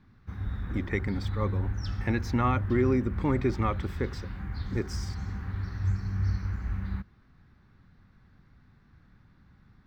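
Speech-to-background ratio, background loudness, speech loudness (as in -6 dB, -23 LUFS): 4.0 dB, -34.5 LUFS, -30.5 LUFS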